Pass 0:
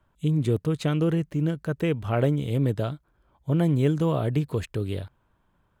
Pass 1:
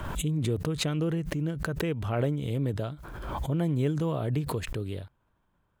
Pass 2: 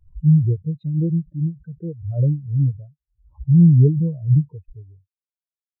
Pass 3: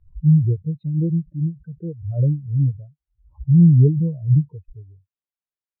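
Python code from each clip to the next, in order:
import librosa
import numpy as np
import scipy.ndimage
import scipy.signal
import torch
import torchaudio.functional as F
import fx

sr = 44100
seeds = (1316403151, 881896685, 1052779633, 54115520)

y1 = fx.pre_swell(x, sr, db_per_s=36.0)
y1 = y1 * librosa.db_to_amplitude(-5.5)
y2 = fx.spectral_expand(y1, sr, expansion=4.0)
y2 = y2 * librosa.db_to_amplitude(6.0)
y3 = fx.air_absorb(y2, sr, metres=210.0)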